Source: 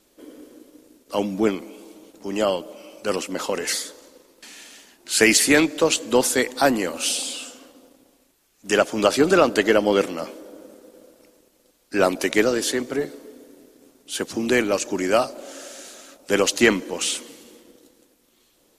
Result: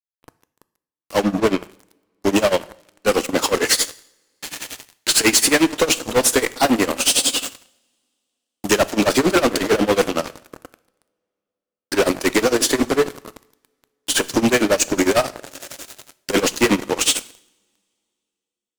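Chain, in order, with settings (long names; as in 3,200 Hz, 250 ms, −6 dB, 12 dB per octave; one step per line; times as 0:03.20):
camcorder AGC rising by 6.3 dB per second
0:01.23–0:01.63: high-shelf EQ 6,400 Hz −12 dB
fuzz pedal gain 25 dB, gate −33 dBFS
amplitude tremolo 11 Hz, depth 92%
coupled-rooms reverb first 0.61 s, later 2.6 s, from −28 dB, DRR 16.5 dB
level +3.5 dB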